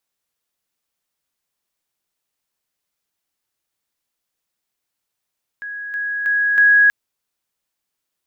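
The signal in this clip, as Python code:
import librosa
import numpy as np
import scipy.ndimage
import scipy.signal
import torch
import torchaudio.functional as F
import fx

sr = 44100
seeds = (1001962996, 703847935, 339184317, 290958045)

y = fx.level_ladder(sr, hz=1660.0, from_db=-26.5, step_db=6.0, steps=4, dwell_s=0.32, gap_s=0.0)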